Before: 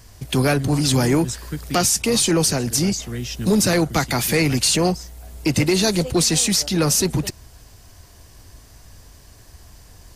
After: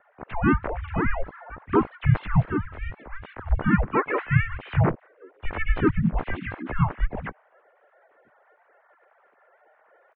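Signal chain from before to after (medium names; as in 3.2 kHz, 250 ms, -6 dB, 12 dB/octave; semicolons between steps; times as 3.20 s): formants replaced by sine waves; in parallel at -0.5 dB: peak limiter -13 dBFS, peak gain reduction 9 dB; on the sum: mistuned SSB -340 Hz 420–2000 Hz; harmony voices -5 st -11 dB, +4 st -2 dB, +7 st -15 dB; trim -7 dB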